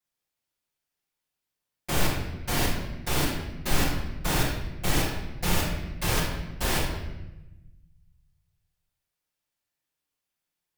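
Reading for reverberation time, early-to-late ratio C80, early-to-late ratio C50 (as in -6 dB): 1.0 s, 5.0 dB, 1.5 dB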